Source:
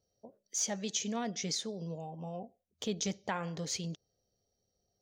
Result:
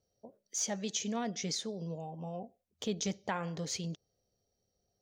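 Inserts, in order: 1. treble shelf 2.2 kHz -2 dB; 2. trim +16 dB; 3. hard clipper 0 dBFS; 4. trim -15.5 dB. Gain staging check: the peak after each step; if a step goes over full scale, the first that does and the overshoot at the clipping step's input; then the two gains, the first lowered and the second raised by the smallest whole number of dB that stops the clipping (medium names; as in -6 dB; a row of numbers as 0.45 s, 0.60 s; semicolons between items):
-20.5 dBFS, -4.5 dBFS, -4.5 dBFS, -20.0 dBFS; nothing clips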